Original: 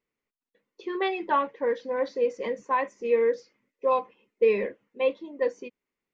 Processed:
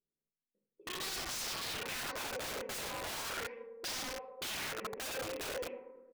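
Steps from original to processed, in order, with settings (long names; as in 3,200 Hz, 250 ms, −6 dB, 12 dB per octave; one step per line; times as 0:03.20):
loose part that buzzes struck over −48 dBFS, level −25 dBFS
on a send: echo machine with several playback heads 107 ms, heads all three, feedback 58%, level −22 dB
on the sum: low-pass that shuts in the quiet parts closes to 300 Hz, open at −23.5 dBFS
high-shelf EQ 3,600 Hz −3 dB
in parallel at −11 dB: dead-zone distortion −37.5 dBFS
on the sum: high-frequency loss of the air 110 metres
mains-hum notches 60/120/180/240/300/360 Hz
comb filter 5.3 ms, depth 62%
feedback delay network reverb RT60 0.98 s, low-frequency decay 0.85×, high-frequency decay 0.35×, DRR 3.5 dB
brickwall limiter −17 dBFS, peak gain reduction 8.5 dB
wrap-around overflow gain 28.5 dB
auto-filter bell 0.37 Hz 450–5,500 Hz +6 dB
level −8 dB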